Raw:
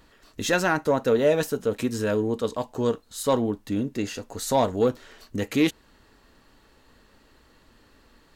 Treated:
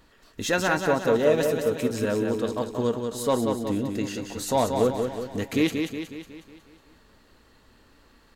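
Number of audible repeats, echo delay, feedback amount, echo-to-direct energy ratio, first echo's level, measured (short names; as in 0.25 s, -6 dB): 6, 0.183 s, 53%, -4.0 dB, -5.5 dB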